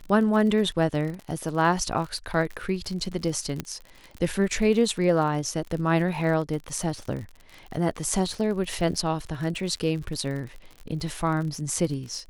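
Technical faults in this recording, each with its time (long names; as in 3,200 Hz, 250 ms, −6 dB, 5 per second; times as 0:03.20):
surface crackle 51 per second −33 dBFS
0:03.60: click −14 dBFS
0:06.91: drop-out 2.3 ms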